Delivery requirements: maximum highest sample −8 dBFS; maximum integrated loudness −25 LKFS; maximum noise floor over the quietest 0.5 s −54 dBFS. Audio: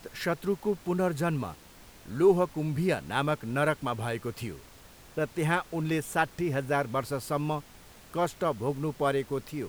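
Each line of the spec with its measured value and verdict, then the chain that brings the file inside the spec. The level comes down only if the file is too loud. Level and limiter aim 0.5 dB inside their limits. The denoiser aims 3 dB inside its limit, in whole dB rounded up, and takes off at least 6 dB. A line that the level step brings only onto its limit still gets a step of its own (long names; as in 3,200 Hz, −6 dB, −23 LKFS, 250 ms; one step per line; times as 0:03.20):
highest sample −11.5 dBFS: in spec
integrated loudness −30.0 LKFS: in spec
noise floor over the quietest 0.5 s −52 dBFS: out of spec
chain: broadband denoise 6 dB, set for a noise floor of −52 dBFS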